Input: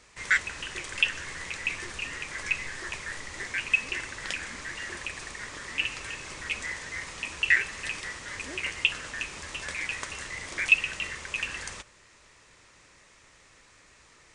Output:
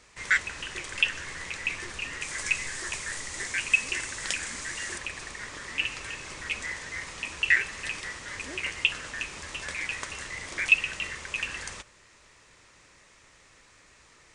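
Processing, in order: 2.21–4.98 s: peaking EQ 8.5 kHz +10 dB 1.4 oct

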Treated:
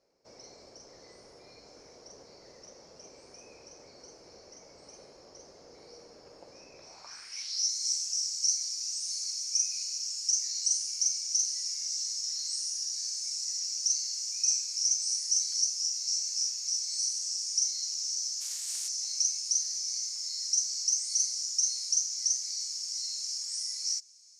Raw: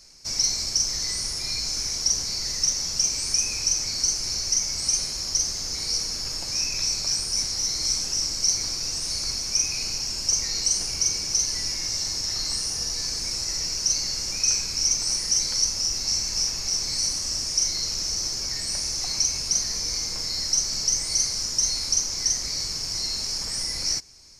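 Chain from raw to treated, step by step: 18.40–18.87 s: spectral contrast reduction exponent 0.37; band-pass sweep 510 Hz -> 6.9 kHz, 6.81–7.72 s; trim -2 dB

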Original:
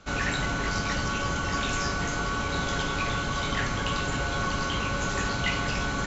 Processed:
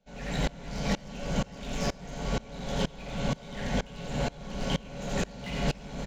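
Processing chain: treble shelf 2.5 kHz -11 dB; static phaser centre 330 Hz, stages 6; overload inside the chain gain 30.5 dB; delay 87 ms -6 dB; on a send at -11.5 dB: reverberation RT60 1.1 s, pre-delay 4 ms; on the sum: sawtooth tremolo in dB swelling 2.1 Hz, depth 25 dB; trim +9 dB

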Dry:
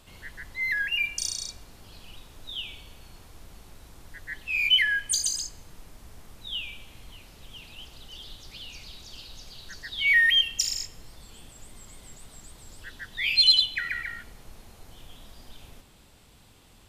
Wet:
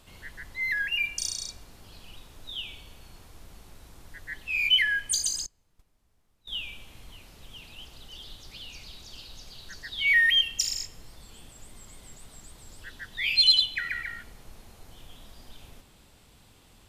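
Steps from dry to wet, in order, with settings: 5.46–6.63 s: gate -38 dBFS, range -22 dB; trim -1 dB

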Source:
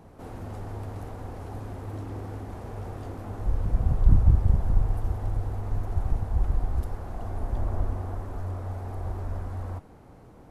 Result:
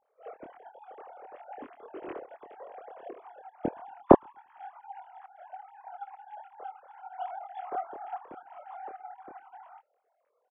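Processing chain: formants replaced by sine waves; doubling 25 ms -2 dB; on a send: filtered feedback delay 115 ms, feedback 42%, low-pass 890 Hz, level -23.5 dB; on the sum: upward expansion 2.5:1, over -35 dBFS

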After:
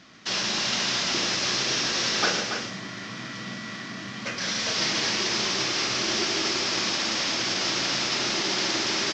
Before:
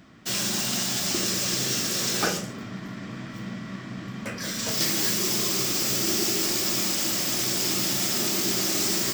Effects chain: CVSD coder 32 kbps; tilt EQ +2.5 dB/octave; on a send: loudspeakers at several distances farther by 38 m -12 dB, 50 m -12 dB, 97 m -7 dB; on the sum: trim +2 dB

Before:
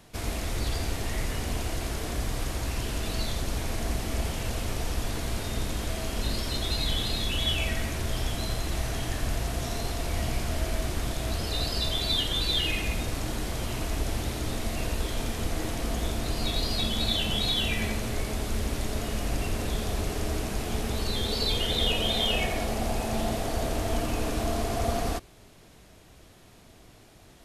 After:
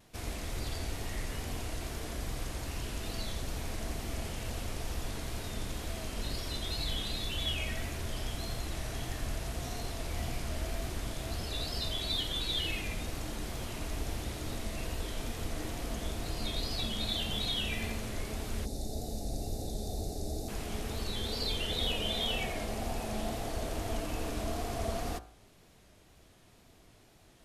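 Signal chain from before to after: wow and flutter 57 cents; de-hum 57.53 Hz, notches 31; time-frequency box 18.65–20.49 s, 870–3500 Hz -19 dB; trim -6.5 dB

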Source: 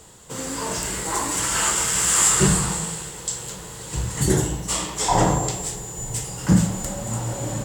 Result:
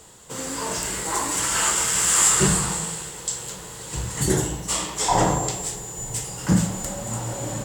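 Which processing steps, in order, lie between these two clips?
bass shelf 250 Hz -4 dB

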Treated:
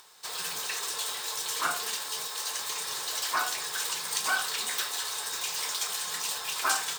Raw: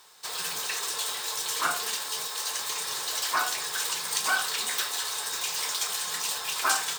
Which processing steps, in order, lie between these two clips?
upward compressor, threshold -50 dBFS; trim -2 dB

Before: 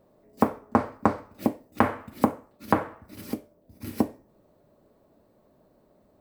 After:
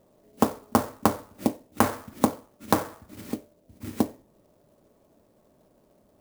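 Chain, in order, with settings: sampling jitter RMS 0.06 ms

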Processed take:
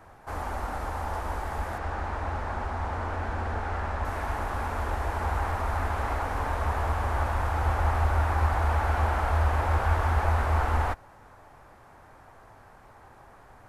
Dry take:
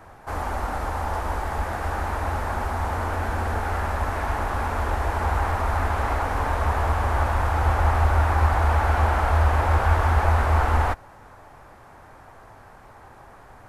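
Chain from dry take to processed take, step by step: 1.78–4.05 s: distance through air 72 m; trim -5 dB

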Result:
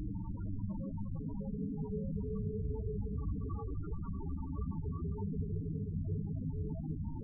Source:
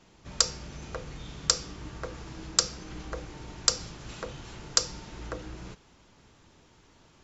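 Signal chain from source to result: two-slope reverb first 0.67 s, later 2 s, DRR -6.5 dB; Paulstretch 11×, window 0.25 s, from 6.06 s; loudest bins only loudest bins 8; trim +15.5 dB

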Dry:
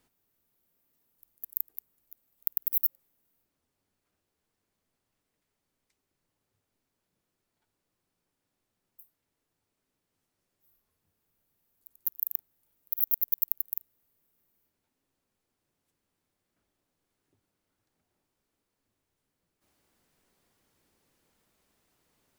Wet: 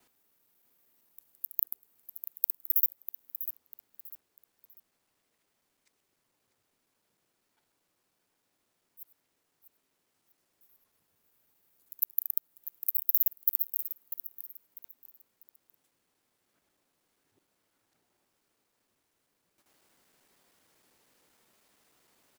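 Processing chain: time reversed locally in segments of 78 ms; bass shelf 400 Hz -3 dB; in parallel at -0.5 dB: compression, threshold -40 dBFS, peak gain reduction 20 dB; on the sum: bass shelf 130 Hz -11 dB; feedback delay 646 ms, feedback 30%, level -11.5 dB

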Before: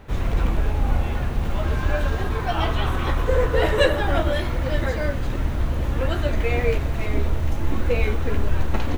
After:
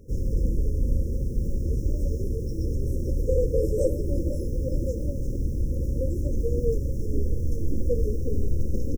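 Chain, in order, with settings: brick-wall FIR band-stop 570–5100 Hz; echo from a far wall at 150 m, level -16 dB; trim -3 dB

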